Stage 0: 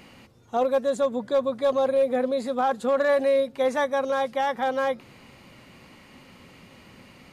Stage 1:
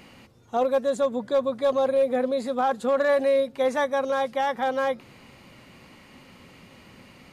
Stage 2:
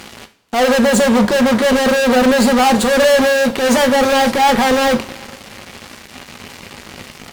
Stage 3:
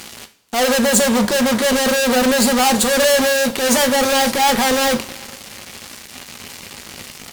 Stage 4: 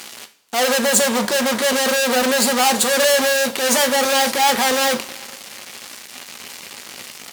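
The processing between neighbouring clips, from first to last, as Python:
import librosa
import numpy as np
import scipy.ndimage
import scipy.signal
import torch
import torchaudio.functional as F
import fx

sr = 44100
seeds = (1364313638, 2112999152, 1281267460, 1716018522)

y1 = x
y2 = fx.fuzz(y1, sr, gain_db=39.0, gate_db=-46.0)
y2 = fx.transient(y2, sr, attack_db=-6, sustain_db=1)
y2 = fx.rev_double_slope(y2, sr, seeds[0], early_s=0.38, late_s=2.1, knee_db=-19, drr_db=7.5)
y2 = y2 * librosa.db_to_amplitude(2.0)
y3 = fx.high_shelf(y2, sr, hz=4200.0, db=12.0)
y3 = y3 * librosa.db_to_amplitude(-4.0)
y4 = fx.highpass(y3, sr, hz=410.0, slope=6)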